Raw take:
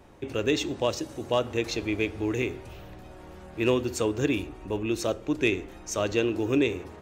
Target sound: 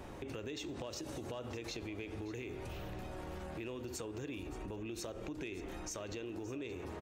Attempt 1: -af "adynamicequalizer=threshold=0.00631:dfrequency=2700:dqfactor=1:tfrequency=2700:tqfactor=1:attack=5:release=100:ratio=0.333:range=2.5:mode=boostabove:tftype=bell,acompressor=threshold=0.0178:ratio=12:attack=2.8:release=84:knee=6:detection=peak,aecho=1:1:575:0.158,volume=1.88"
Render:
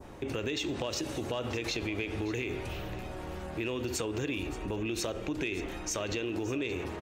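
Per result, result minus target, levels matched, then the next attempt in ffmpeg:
compression: peak gain reduction -7.5 dB; 2 kHz band +2.5 dB
-af "adynamicequalizer=threshold=0.00631:dfrequency=2700:dqfactor=1:tfrequency=2700:tqfactor=1:attack=5:release=100:ratio=0.333:range=2.5:mode=boostabove:tftype=bell,acompressor=threshold=0.00531:ratio=12:attack=2.8:release=84:knee=6:detection=peak,aecho=1:1:575:0.158,volume=1.88"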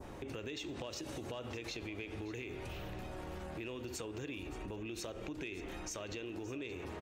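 2 kHz band +2.5 dB
-af "acompressor=threshold=0.00531:ratio=12:attack=2.8:release=84:knee=6:detection=peak,aecho=1:1:575:0.158,volume=1.88"

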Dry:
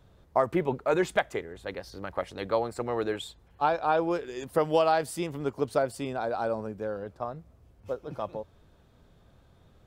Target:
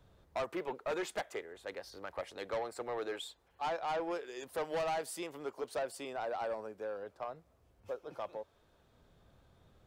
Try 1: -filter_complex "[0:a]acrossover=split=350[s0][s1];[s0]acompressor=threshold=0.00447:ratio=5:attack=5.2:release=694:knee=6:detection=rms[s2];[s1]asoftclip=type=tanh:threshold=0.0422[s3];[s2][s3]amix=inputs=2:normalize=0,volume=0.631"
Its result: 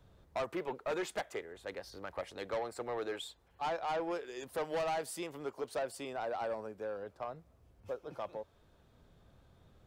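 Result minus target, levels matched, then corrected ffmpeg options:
compression: peak gain reduction -6 dB
-filter_complex "[0:a]acrossover=split=350[s0][s1];[s0]acompressor=threshold=0.00188:ratio=5:attack=5.2:release=694:knee=6:detection=rms[s2];[s1]asoftclip=type=tanh:threshold=0.0422[s3];[s2][s3]amix=inputs=2:normalize=0,volume=0.631"

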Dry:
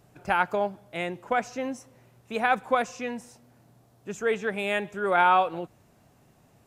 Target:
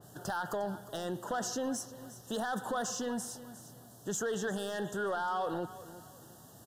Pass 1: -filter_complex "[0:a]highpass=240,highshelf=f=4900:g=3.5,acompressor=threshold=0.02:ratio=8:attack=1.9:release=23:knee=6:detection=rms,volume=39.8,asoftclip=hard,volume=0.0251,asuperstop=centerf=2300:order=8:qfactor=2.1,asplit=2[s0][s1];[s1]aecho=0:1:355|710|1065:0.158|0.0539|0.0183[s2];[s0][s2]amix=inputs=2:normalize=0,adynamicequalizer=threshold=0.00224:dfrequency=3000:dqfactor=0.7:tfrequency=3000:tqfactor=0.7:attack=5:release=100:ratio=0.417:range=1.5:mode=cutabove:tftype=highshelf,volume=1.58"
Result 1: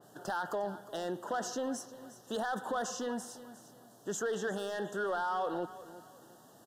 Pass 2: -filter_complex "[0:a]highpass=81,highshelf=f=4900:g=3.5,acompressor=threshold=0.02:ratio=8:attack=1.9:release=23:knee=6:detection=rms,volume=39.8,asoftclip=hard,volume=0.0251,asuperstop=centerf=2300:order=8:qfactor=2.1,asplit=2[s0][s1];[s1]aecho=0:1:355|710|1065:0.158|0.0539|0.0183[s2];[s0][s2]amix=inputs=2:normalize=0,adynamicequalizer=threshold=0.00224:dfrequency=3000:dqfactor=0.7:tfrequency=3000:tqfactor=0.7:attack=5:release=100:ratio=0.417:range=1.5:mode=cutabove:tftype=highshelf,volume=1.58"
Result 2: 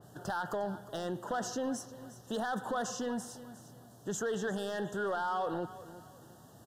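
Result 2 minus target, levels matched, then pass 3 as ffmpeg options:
8 kHz band -4.0 dB
-filter_complex "[0:a]highpass=81,highshelf=f=4900:g=12,acompressor=threshold=0.02:ratio=8:attack=1.9:release=23:knee=6:detection=rms,volume=39.8,asoftclip=hard,volume=0.0251,asuperstop=centerf=2300:order=8:qfactor=2.1,asplit=2[s0][s1];[s1]aecho=0:1:355|710|1065:0.158|0.0539|0.0183[s2];[s0][s2]amix=inputs=2:normalize=0,adynamicequalizer=threshold=0.00224:dfrequency=3000:dqfactor=0.7:tfrequency=3000:tqfactor=0.7:attack=5:release=100:ratio=0.417:range=1.5:mode=cutabove:tftype=highshelf,volume=1.58"

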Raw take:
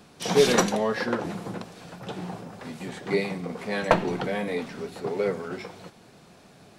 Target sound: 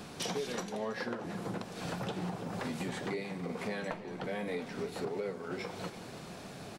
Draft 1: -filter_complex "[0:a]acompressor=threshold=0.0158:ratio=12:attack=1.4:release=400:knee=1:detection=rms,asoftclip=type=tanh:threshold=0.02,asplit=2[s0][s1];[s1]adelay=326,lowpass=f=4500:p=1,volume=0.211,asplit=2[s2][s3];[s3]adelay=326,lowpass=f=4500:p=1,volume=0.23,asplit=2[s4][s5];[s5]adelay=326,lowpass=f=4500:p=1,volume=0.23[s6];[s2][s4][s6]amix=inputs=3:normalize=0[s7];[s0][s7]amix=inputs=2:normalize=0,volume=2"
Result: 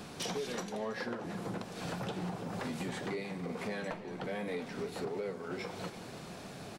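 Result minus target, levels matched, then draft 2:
saturation: distortion +21 dB
-filter_complex "[0:a]acompressor=threshold=0.0158:ratio=12:attack=1.4:release=400:knee=1:detection=rms,asoftclip=type=tanh:threshold=0.0794,asplit=2[s0][s1];[s1]adelay=326,lowpass=f=4500:p=1,volume=0.211,asplit=2[s2][s3];[s3]adelay=326,lowpass=f=4500:p=1,volume=0.23,asplit=2[s4][s5];[s5]adelay=326,lowpass=f=4500:p=1,volume=0.23[s6];[s2][s4][s6]amix=inputs=3:normalize=0[s7];[s0][s7]amix=inputs=2:normalize=0,volume=2"

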